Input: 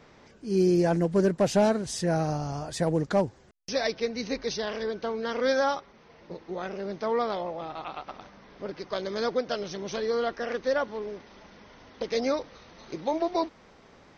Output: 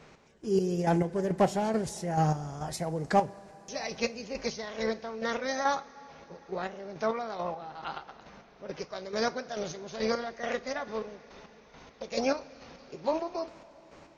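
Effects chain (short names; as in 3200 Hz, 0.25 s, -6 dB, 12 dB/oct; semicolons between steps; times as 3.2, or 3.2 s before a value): chopper 2.3 Hz, depth 60%, duty 35%; formant shift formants +2 st; two-slope reverb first 0.23 s, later 4.9 s, from -21 dB, DRR 10.5 dB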